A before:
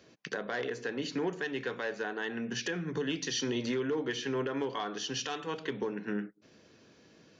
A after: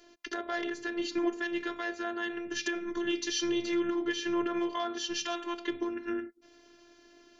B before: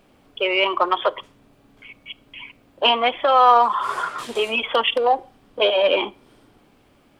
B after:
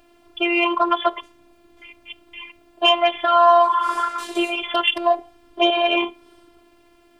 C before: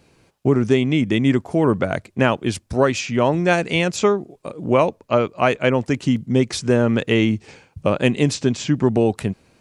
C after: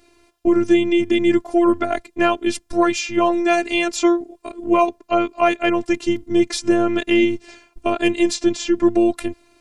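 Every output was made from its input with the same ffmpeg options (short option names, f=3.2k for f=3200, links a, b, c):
-af "afftfilt=real='hypot(re,im)*cos(PI*b)':imag='0':win_size=512:overlap=0.75,acontrast=24"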